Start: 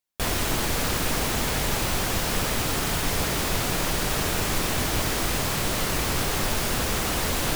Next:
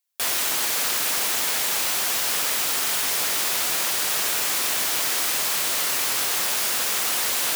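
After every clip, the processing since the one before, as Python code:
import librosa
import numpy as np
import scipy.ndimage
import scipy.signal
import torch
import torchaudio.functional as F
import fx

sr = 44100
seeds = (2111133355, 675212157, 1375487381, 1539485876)

y = fx.highpass(x, sr, hz=640.0, slope=6)
y = fx.tilt_eq(y, sr, slope=2.0)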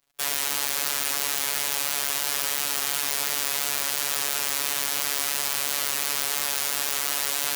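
y = fx.dmg_crackle(x, sr, seeds[0], per_s=190.0, level_db=-50.0)
y = fx.robotise(y, sr, hz=142.0)
y = y * 10.0 ** (-1.0 / 20.0)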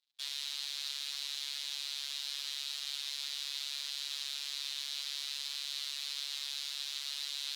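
y = fx.bandpass_q(x, sr, hz=3900.0, q=4.1)
y = y * 10.0 ** (-2.0 / 20.0)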